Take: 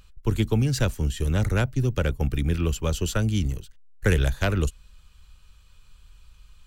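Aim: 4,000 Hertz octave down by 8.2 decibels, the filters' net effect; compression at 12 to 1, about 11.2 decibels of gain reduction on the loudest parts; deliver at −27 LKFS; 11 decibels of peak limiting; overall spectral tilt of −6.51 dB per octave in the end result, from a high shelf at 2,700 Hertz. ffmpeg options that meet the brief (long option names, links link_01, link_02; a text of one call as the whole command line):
ffmpeg -i in.wav -af "highshelf=frequency=2700:gain=-3.5,equalizer=frequency=4000:width_type=o:gain=-8.5,acompressor=threshold=-28dB:ratio=12,volume=11dB,alimiter=limit=-16.5dB:level=0:latency=1" out.wav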